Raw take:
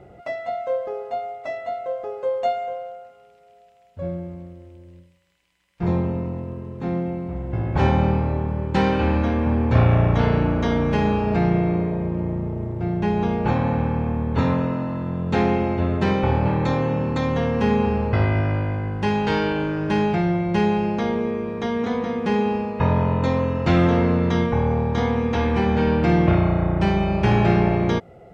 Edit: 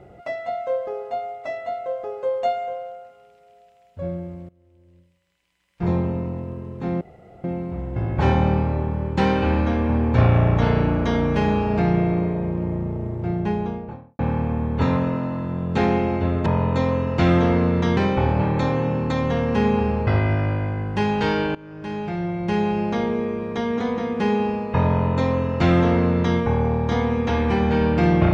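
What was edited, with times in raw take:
4.49–5.84 s: fade in, from -21 dB
7.01 s: insert room tone 0.43 s
12.82–13.76 s: studio fade out
19.61–20.95 s: fade in linear, from -20.5 dB
22.94–24.45 s: copy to 16.03 s

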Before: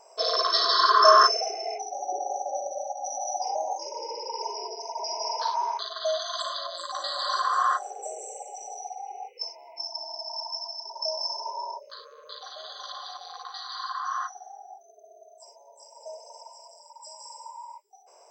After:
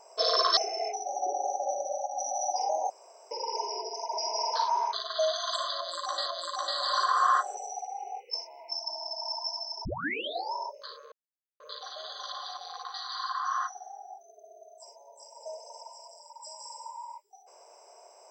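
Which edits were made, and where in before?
0.57–1.43 s: delete
3.76–4.17 s: room tone
6.62–7.12 s: loop, 2 plays
7.93–8.65 s: delete
10.93 s: tape start 0.68 s
12.20 s: insert silence 0.48 s

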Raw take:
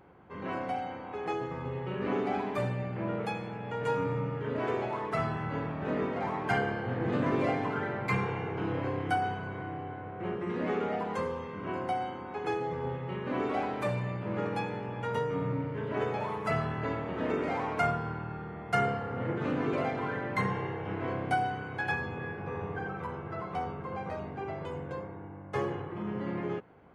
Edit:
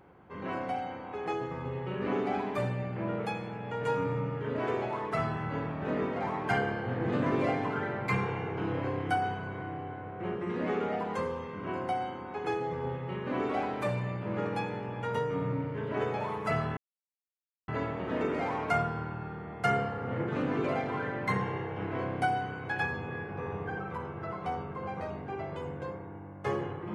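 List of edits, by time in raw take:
16.77 s: insert silence 0.91 s

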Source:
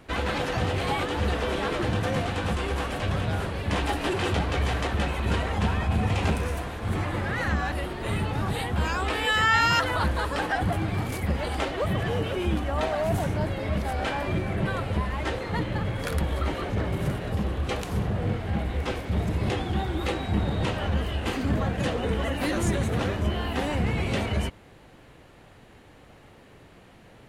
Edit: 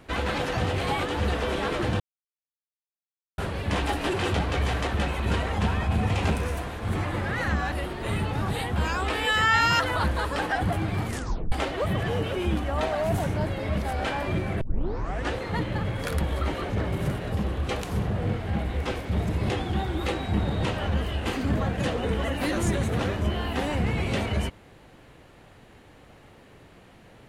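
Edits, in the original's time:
2.00–3.38 s: mute
11.06 s: tape stop 0.46 s
14.61 s: tape start 0.72 s

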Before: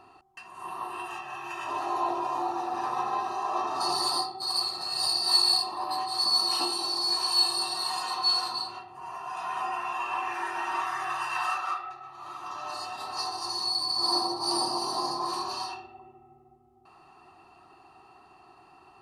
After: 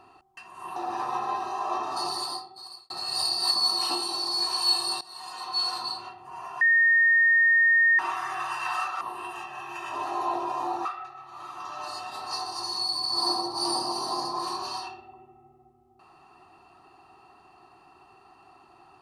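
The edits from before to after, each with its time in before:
0.76–2.60 s: move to 11.71 s
3.63–4.74 s: fade out
5.35–6.21 s: delete
7.71–8.53 s: fade in, from -20 dB
9.31–10.69 s: bleep 1.84 kHz -16.5 dBFS

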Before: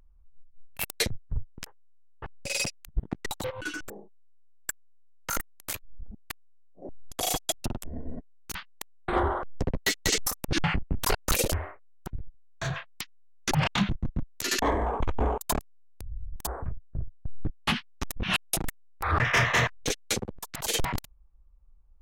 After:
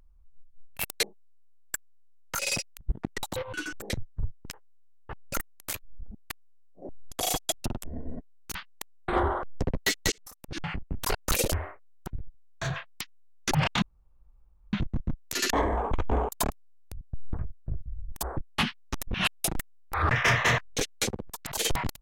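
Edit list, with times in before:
1.03–2.47 s: swap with 3.98–5.34 s
10.12–11.47 s: fade in
13.82 s: insert room tone 0.91 s
16.10–16.61 s: swap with 17.13–17.46 s

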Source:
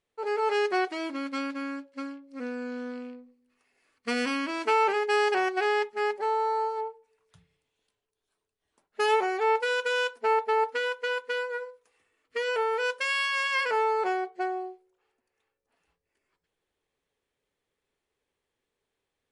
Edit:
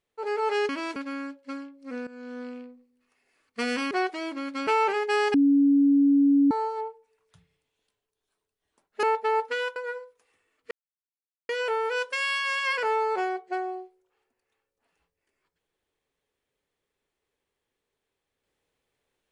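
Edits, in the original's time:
0.69–1.45 s: swap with 4.40–4.67 s
2.56–2.93 s: fade in, from -14.5 dB
5.34–6.51 s: bleep 281 Hz -16 dBFS
9.03–10.27 s: delete
11.00–11.42 s: delete
12.37 s: insert silence 0.78 s

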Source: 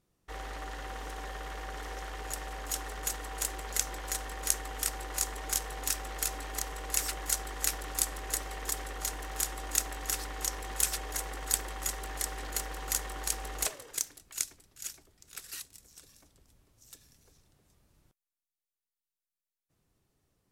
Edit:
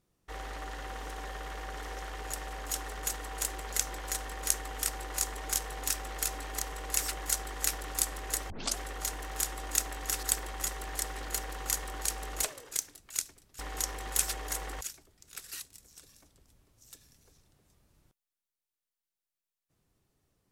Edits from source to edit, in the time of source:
8.50 s: tape start 0.27 s
10.23–11.45 s: move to 14.81 s

